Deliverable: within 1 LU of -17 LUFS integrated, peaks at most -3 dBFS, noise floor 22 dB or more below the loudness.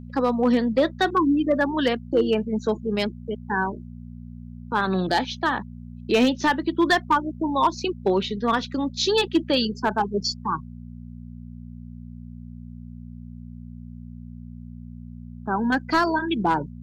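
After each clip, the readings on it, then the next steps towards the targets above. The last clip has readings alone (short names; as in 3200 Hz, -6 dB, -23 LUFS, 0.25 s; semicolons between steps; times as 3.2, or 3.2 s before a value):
clipped 0.4%; flat tops at -12.0 dBFS; hum 60 Hz; harmonics up to 240 Hz; hum level -37 dBFS; loudness -23.5 LUFS; peak -12.0 dBFS; loudness target -17.0 LUFS
-> clip repair -12 dBFS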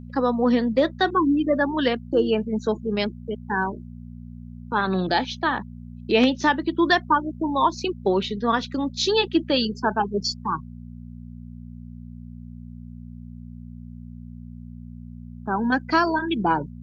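clipped 0.0%; hum 60 Hz; harmonics up to 240 Hz; hum level -36 dBFS
-> de-hum 60 Hz, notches 4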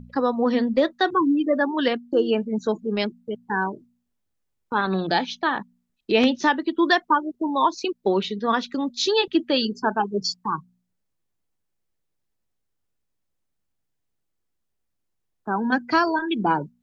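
hum none; loudness -23.0 LUFS; peak -4.5 dBFS; loudness target -17.0 LUFS
-> gain +6 dB; limiter -3 dBFS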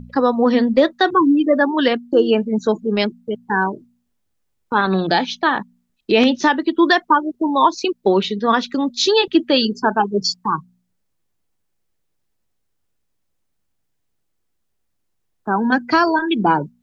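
loudness -17.5 LUFS; peak -3.0 dBFS; noise floor -70 dBFS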